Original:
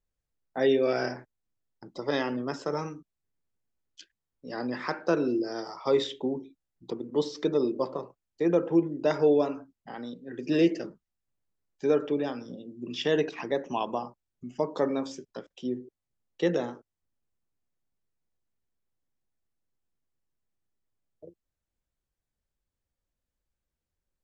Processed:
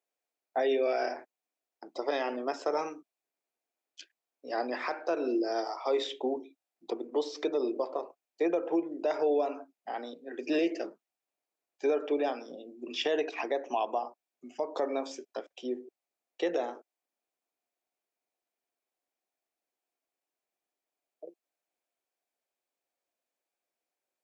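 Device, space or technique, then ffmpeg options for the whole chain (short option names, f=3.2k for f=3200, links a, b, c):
laptop speaker: -af "highpass=f=300:w=0.5412,highpass=f=300:w=1.3066,equalizer=f=700:t=o:w=0.46:g=9.5,equalizer=f=2.4k:t=o:w=0.25:g=6.5,alimiter=limit=-20dB:level=0:latency=1:release=196"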